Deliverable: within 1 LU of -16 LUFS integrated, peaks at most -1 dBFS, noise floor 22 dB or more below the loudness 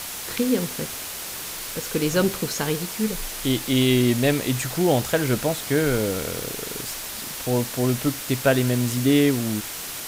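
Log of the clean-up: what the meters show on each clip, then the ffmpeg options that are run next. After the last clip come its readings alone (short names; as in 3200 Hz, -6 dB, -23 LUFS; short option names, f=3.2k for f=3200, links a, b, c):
noise floor -33 dBFS; noise floor target -46 dBFS; loudness -23.5 LUFS; peak -6.5 dBFS; loudness target -16.0 LUFS
-> -af "afftdn=nr=13:nf=-33"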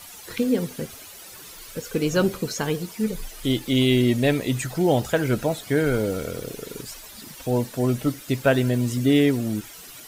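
noise floor -43 dBFS; noise floor target -46 dBFS
-> -af "afftdn=nr=6:nf=-43"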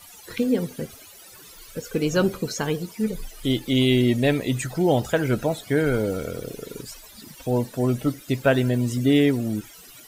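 noise floor -46 dBFS; loudness -23.5 LUFS; peak -6.5 dBFS; loudness target -16.0 LUFS
-> -af "volume=7.5dB,alimiter=limit=-1dB:level=0:latency=1"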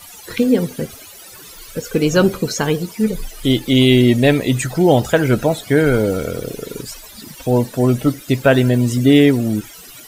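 loudness -16.0 LUFS; peak -1.0 dBFS; noise floor -39 dBFS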